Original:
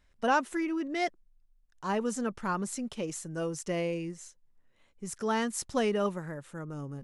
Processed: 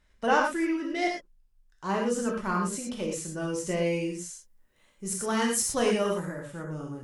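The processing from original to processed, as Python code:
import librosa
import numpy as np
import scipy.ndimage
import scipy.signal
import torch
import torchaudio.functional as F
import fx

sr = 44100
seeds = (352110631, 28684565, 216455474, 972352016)

y = fx.cheby_harmonics(x, sr, harmonics=(2,), levels_db=(-21,), full_scale_db=-14.5)
y = fx.high_shelf(y, sr, hz=7200.0, db=11.0, at=(3.86, 6.29))
y = fx.rev_gated(y, sr, seeds[0], gate_ms=140, shape='flat', drr_db=-1.0)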